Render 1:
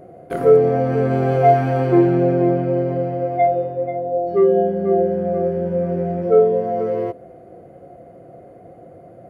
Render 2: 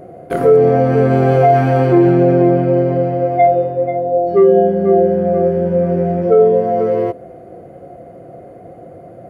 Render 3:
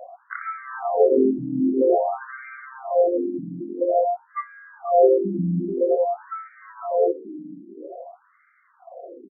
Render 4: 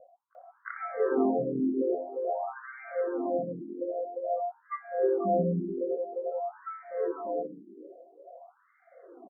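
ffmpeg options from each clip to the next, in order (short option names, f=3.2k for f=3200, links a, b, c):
-af "alimiter=level_in=7dB:limit=-1dB:release=50:level=0:latency=1,volume=-1dB"
-filter_complex "[0:a]asplit=4[a][b][c][d];[b]adelay=491,afreqshift=-66,volume=-20.5dB[e];[c]adelay=982,afreqshift=-132,volume=-27.6dB[f];[d]adelay=1473,afreqshift=-198,volume=-34.8dB[g];[a][e][f][g]amix=inputs=4:normalize=0,afftfilt=real='re*between(b*sr/1024,230*pow(1700/230,0.5+0.5*sin(2*PI*0.5*pts/sr))/1.41,230*pow(1700/230,0.5+0.5*sin(2*PI*0.5*pts/sr))*1.41)':imag='im*between(b*sr/1024,230*pow(1700/230,0.5+0.5*sin(2*PI*0.5*pts/sr))/1.41,230*pow(1700/230,0.5+0.5*sin(2*PI*0.5*pts/sr))*1.41)':win_size=1024:overlap=0.75"
-filter_complex "[0:a]acrossover=split=540[a][b];[b]adelay=350[c];[a][c]amix=inputs=2:normalize=0,volume=-6.5dB"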